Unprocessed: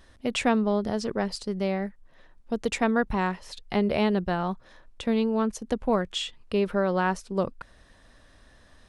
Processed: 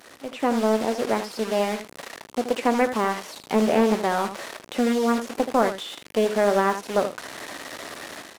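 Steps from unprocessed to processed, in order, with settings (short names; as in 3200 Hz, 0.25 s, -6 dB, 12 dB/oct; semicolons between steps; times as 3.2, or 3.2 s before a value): delta modulation 64 kbps, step -30 dBFS; de-esser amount 100%; HPF 290 Hz 12 dB/oct; AGC gain up to 10.5 dB; in parallel at -10.5 dB: sample gate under -22.5 dBFS; on the sum: varispeed +6%; on a send: early reflections 18 ms -14.5 dB, 78 ms -10 dB; on the sum: Doppler distortion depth 0.36 ms; gain -5.5 dB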